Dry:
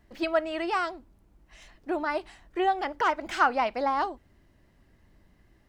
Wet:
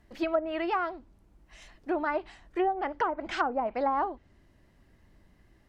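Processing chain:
treble cut that deepens with the level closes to 630 Hz, closed at −20.5 dBFS

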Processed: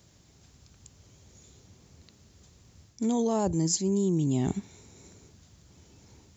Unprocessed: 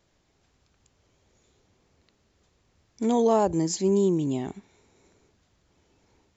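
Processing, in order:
high-pass filter 66 Hz
bass and treble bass +11 dB, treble +11 dB
reversed playback
downward compressor 8 to 1, threshold −27 dBFS, peak gain reduction 13 dB
reversed playback
level +3.5 dB

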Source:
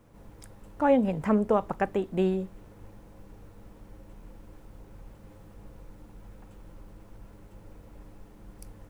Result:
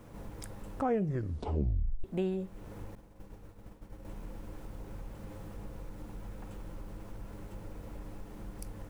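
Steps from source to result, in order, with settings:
0:00.72: tape stop 1.32 s
0:02.95–0:04.05: downward expander −40 dBFS
downward compressor 2 to 1, threshold −47 dBFS, peak gain reduction 16 dB
level +6.5 dB

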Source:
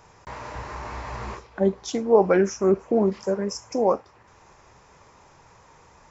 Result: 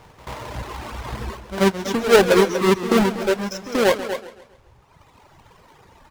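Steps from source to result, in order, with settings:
each half-wave held at its own peak
on a send: single-tap delay 240 ms −7 dB
on the sum: reverb reduction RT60 1.8 s
high-shelf EQ 6,900 Hz −8.5 dB
echo ahead of the sound 84 ms −14 dB
feedback echo with a swinging delay time 135 ms, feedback 42%, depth 117 cents, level −14 dB
level +1 dB

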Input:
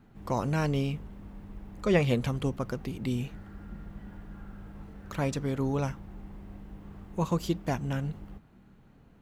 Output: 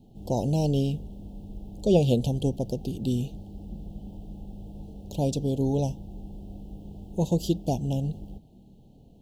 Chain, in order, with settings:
inverse Chebyshev band-stop filter 1,100–2,200 Hz, stop band 40 dB
level +4 dB

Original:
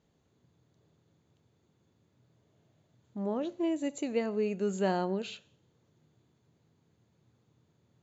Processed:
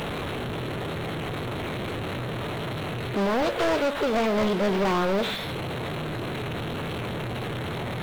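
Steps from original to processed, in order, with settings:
linear delta modulator 16 kbit/s, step −43 dBFS
formants moved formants +5 semitones
leveller curve on the samples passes 5

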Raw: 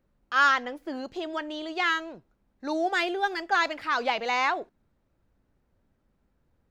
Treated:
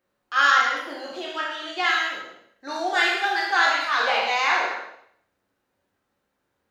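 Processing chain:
peak hold with a decay on every bin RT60 0.66 s
high-pass filter 790 Hz 6 dB per octave
reverb whose tail is shaped and stops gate 290 ms falling, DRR −2 dB

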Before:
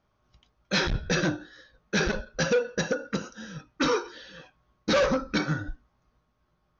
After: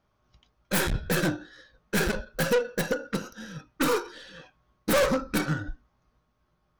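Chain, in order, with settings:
stylus tracing distortion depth 0.26 ms

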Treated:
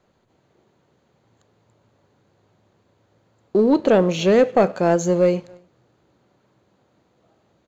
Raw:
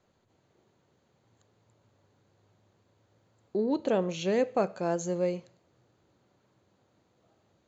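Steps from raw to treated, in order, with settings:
parametric band 97 Hz −5.5 dB 0.32 octaves
slap from a distant wall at 48 metres, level −27 dB
leveller curve on the samples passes 1
high-shelf EQ 4,900 Hz −6 dB
level +9 dB

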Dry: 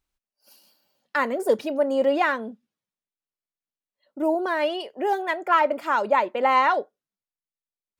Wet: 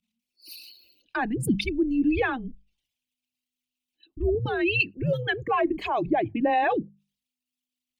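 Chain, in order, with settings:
spectral envelope exaggerated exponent 2
high shelf with overshoot 2,200 Hz +10.5 dB, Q 3
in parallel at −1 dB: brickwall limiter −16.5 dBFS, peak gain reduction 8 dB
on the sum: mains-hum notches 50/100/150/200/250/300/350/400/450 Hz
frequency shifter −250 Hz
level −6 dB

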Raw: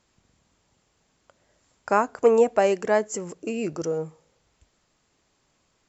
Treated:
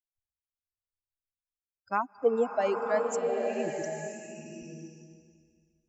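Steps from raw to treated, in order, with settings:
spectral dynamics exaggerated over time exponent 3
slow-attack reverb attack 980 ms, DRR 2 dB
level −4 dB

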